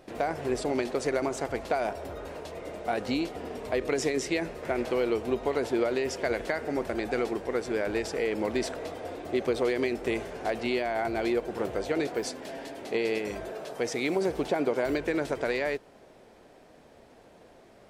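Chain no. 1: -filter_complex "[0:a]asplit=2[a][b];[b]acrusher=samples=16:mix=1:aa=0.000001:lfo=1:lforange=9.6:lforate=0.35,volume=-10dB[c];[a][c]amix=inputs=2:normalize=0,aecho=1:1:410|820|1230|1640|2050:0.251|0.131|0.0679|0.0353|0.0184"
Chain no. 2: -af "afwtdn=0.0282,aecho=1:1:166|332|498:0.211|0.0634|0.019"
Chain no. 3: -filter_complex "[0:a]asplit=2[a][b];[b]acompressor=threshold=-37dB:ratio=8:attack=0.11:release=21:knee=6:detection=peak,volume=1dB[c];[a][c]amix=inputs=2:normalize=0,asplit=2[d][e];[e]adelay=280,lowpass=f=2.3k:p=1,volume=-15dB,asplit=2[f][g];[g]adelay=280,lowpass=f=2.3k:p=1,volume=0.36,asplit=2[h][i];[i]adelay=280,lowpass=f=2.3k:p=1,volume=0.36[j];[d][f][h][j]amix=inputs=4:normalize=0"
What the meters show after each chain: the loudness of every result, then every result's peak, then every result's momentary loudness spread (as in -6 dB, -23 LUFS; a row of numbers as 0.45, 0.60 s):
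-28.0, -31.0, -28.0 LUFS; -12.5, -14.5, -13.5 dBFS; 10, 11, 8 LU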